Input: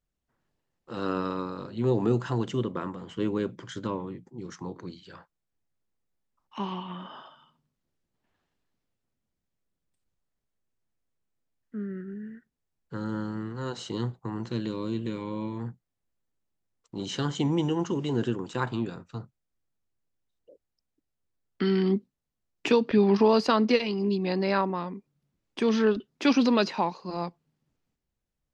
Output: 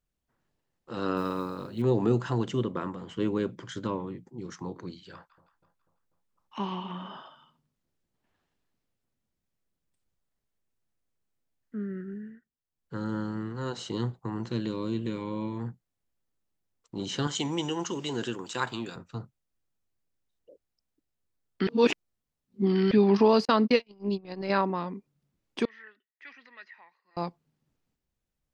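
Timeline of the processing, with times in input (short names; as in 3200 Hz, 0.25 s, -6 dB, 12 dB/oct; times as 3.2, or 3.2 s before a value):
1.16–1.82 modulation noise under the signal 31 dB
5.13–7.17 split-band echo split 960 Hz, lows 0.245 s, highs 0.165 s, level -14 dB
12.15–12.97 dip -12 dB, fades 0.32 s
17.27–18.96 tilt +3 dB/oct
21.67–22.91 reverse
23.45–24.5 gate -26 dBFS, range -44 dB
25.65–27.17 band-pass 1900 Hz, Q 17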